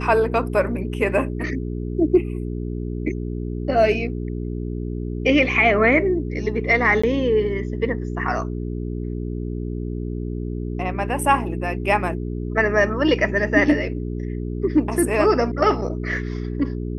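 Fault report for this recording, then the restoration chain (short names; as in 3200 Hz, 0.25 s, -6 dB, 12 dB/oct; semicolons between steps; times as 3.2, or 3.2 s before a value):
hum 60 Hz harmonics 7 -27 dBFS
7.02–7.04 gap 15 ms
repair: de-hum 60 Hz, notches 7; interpolate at 7.02, 15 ms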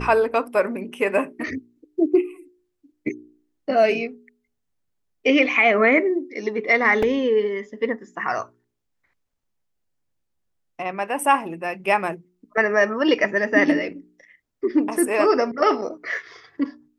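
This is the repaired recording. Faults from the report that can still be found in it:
none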